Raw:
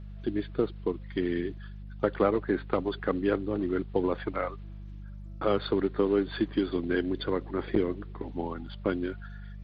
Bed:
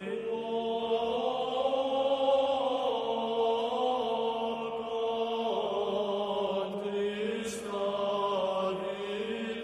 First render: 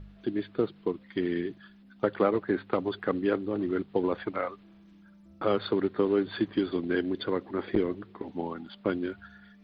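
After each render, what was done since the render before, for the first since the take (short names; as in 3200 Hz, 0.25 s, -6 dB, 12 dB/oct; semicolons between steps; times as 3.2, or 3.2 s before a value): de-hum 50 Hz, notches 3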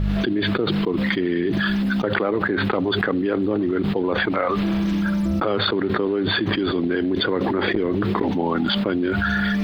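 fast leveller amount 100%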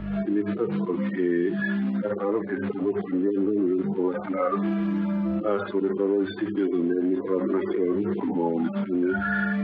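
median-filter separation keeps harmonic; three-band isolator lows -16 dB, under 190 Hz, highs -19 dB, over 2500 Hz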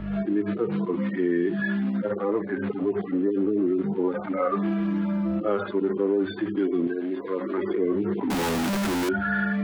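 6.87–7.58 tilt +3 dB/oct; 8.3–9.09 infinite clipping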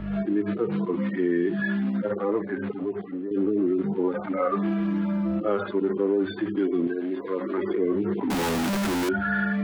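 2.35–3.31 fade out, to -9.5 dB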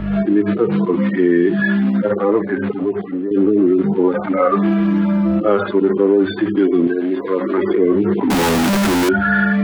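gain +10 dB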